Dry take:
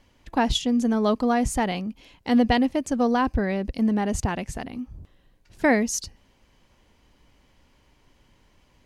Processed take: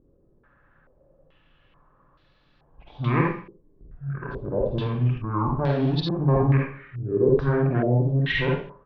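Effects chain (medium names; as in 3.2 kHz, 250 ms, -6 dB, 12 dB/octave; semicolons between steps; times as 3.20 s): reverse the whole clip; pitch shift -10 st; one-sided clip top -22.5 dBFS, bottom -13 dBFS; distance through air 92 m; reverberation RT60 0.45 s, pre-delay 44 ms, DRR -2 dB; step-sequenced low-pass 2.3 Hz 410–4200 Hz; trim -4 dB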